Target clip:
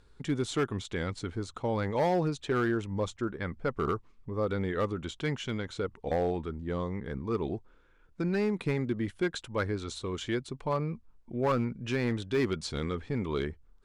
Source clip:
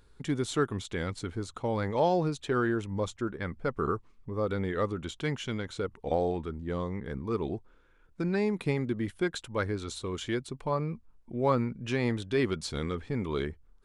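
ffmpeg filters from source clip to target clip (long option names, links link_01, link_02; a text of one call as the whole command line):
ffmpeg -i in.wav -af "lowpass=8400,volume=21.5dB,asoftclip=hard,volume=-21.5dB" out.wav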